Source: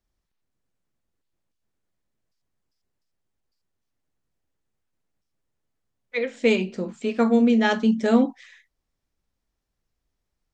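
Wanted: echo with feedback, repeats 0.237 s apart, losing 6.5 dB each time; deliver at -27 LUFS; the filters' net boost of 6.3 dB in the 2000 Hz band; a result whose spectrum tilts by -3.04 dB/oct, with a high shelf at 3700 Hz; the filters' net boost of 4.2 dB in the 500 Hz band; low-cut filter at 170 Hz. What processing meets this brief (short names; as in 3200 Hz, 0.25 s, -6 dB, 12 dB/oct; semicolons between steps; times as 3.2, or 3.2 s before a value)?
HPF 170 Hz; bell 500 Hz +4.5 dB; bell 2000 Hz +5.5 dB; high shelf 3700 Hz +7.5 dB; feedback echo 0.237 s, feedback 47%, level -6.5 dB; gain -8 dB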